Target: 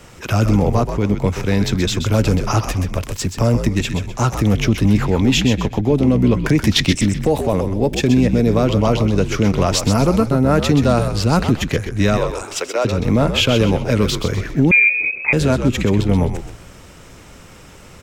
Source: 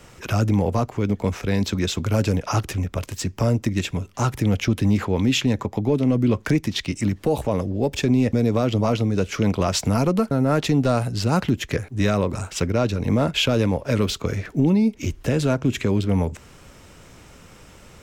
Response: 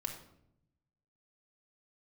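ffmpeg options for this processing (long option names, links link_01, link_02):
-filter_complex "[0:a]asettb=1/sr,asplit=3[link_01][link_02][link_03];[link_01]atrim=end=6.584[link_04];[link_02]atrim=start=6.58:end=7.02,asetpts=PTS-STARTPTS,afade=type=in:duration=0.004:curve=qsin,afade=type=out:start_time=0.436:duration=0.004:curve=qsin,acontrast=52[link_05];[link_03]atrim=start=7.016[link_06];[link_04][link_05]acrossfade=duration=0.004:curve1=hsin:curve2=qsin[link_07];[link_07][link_06]acrossfade=duration=0.004:curve1=qsin:curve2=hsin,asettb=1/sr,asplit=3[link_08][link_09][link_10];[link_08]atrim=end=12.174[link_11];[link_09]atrim=start=12.17:end=12.85,asetpts=PTS-STARTPTS,afade=type=in:duration=0.004:curve=qsin,afade=type=out:start_time=0.676:duration=0.004:curve=qsin,highpass=frequency=430:width=0.5412,highpass=frequency=430:width=1.3066[link_12];[link_10]atrim=start=12.846[link_13];[link_11][link_12]acrossfade=duration=0.004:curve1=hsin:curve2=qsin[link_14];[link_14][link_13]acrossfade=duration=0.004:curve1=qsin:curve2=hsin,asplit=2[link_15][link_16];[link_16]asplit=4[link_17][link_18][link_19][link_20];[link_17]adelay=128,afreqshift=-68,volume=-8dB[link_21];[link_18]adelay=256,afreqshift=-136,volume=-17.4dB[link_22];[link_19]adelay=384,afreqshift=-204,volume=-26.7dB[link_23];[link_20]adelay=512,afreqshift=-272,volume=-36.1dB[link_24];[link_21][link_22][link_23][link_24]amix=inputs=4:normalize=0[link_25];[link_15][link_25]amix=inputs=2:normalize=0,asettb=1/sr,asplit=3[link_26][link_27][link_28];[link_26]atrim=end=14.714[link_29];[link_27]atrim=start=14.71:end=15.33,asetpts=PTS-STARTPTS,afade=type=in:duration=0.004:curve=qsin,afade=type=out:start_time=0.616:duration=0.004:curve=qsin,lowpass=frequency=2200:width_type=q:width=0.5098,lowpass=frequency=2200:width_type=q:width=0.6013,lowpass=frequency=2200:width_type=q:width=0.9,lowpass=frequency=2200:width_type=q:width=2.563,afreqshift=-2600[link_30];[link_28]atrim=start=15.326[link_31];[link_29][link_30]acrossfade=duration=0.004:curve1=hsin:curve2=qsin[link_32];[link_32][link_31]acrossfade=duration=0.004:curve1=qsin:curve2=hsin,volume=4.5dB"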